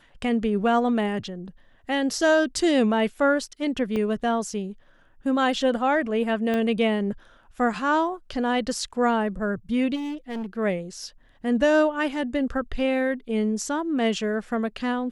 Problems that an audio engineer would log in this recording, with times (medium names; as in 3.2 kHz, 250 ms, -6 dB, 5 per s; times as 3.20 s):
3.96 s: dropout 2.6 ms
6.54 s: pop -15 dBFS
9.95–10.46 s: clipped -28 dBFS